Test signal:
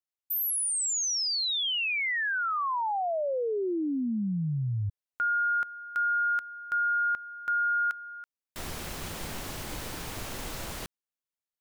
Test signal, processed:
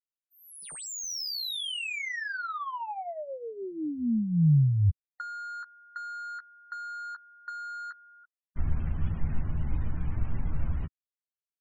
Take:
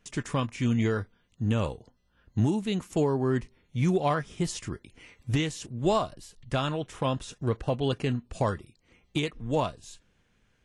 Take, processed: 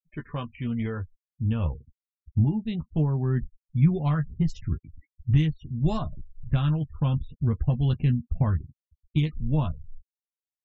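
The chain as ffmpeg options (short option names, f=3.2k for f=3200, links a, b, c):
-filter_complex "[0:a]adynamicsmooth=sensitivity=7.5:basefreq=2.3k,afftfilt=real='re*gte(hypot(re,im),0.0112)':imag='im*gte(hypot(re,im),0.0112)':win_size=1024:overlap=0.75,asubboost=boost=11:cutoff=140,asplit=2[a][b];[b]adelay=13,volume=-6dB[c];[a][c]amix=inputs=2:normalize=0,volume=-5.5dB"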